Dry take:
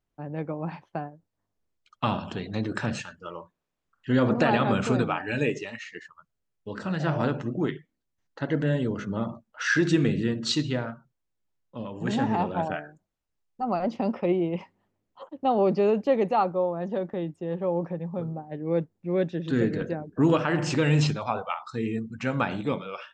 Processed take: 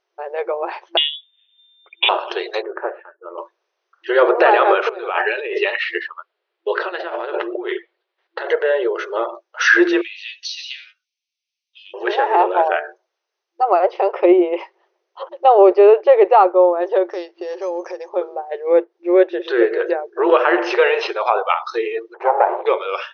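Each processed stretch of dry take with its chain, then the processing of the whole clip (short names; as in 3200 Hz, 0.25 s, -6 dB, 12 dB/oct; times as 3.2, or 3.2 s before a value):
0.97–2.09 tilt shelf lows +4 dB, about 1400 Hz + comb 6.9 ms, depth 31% + inverted band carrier 3600 Hz
2.62–3.38 Bessel low-pass 1000 Hz, order 6 + upward expander, over -40 dBFS
4.89–8.48 inverse Chebyshev low-pass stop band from 7400 Hz + negative-ratio compressor -33 dBFS
10.01–11.94 elliptic high-pass 2400 Hz, stop band 60 dB + compressor 16:1, threshold -38 dBFS + doubler 12 ms -5 dB
17.1–18.09 high shelf 2300 Hz +11.5 dB + compressor 3:1, threshold -36 dBFS + careless resampling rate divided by 6×, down filtered, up hold
22.14–22.66 minimum comb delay 0.48 ms + synth low-pass 860 Hz, resonance Q 4.3
whole clip: treble ducked by the level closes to 2400 Hz, closed at -23 dBFS; FFT band-pass 340–6400 Hz; maximiser +14.5 dB; gain -1 dB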